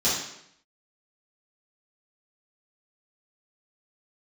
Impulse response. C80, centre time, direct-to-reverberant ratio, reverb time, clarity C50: 5.5 dB, 54 ms, −11.5 dB, 0.75 s, 1.5 dB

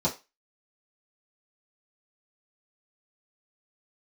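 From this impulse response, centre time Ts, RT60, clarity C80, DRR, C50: 16 ms, 0.25 s, 20.5 dB, −8.0 dB, 14.0 dB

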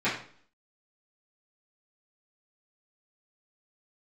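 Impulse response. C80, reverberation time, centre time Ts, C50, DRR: 10.0 dB, 0.50 s, 33 ms, 6.0 dB, −13.0 dB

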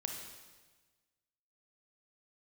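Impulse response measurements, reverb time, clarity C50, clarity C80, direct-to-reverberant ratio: 1.3 s, 3.5 dB, 5.5 dB, 2.0 dB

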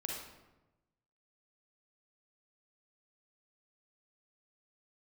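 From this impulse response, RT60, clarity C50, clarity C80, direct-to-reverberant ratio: 1.1 s, 0.0 dB, 4.0 dB, −1.5 dB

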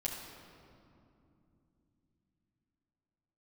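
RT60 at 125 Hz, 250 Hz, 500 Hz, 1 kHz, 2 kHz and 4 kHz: 4.9, 4.8, 2.9, 2.5, 1.9, 1.5 seconds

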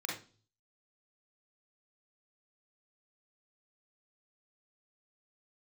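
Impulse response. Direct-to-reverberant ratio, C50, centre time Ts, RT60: −2.5 dB, 3.5 dB, 37 ms, 0.40 s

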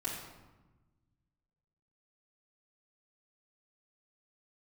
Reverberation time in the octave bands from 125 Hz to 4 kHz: 2.2, 1.7, 1.2, 1.1, 0.90, 0.70 seconds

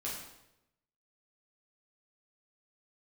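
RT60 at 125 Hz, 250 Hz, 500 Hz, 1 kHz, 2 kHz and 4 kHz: 1.1, 0.95, 0.95, 0.80, 0.80, 0.75 seconds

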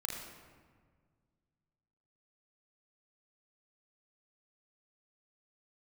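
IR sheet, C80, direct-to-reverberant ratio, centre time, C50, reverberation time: 4.0 dB, −1.5 dB, 64 ms, 2.0 dB, 1.7 s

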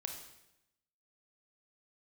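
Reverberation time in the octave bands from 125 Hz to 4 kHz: 1.0, 1.0, 0.90, 0.85, 0.85, 0.80 seconds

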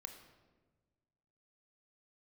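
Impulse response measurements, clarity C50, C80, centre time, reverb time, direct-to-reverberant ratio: 8.0 dB, 9.5 dB, 22 ms, 1.4 s, 5.5 dB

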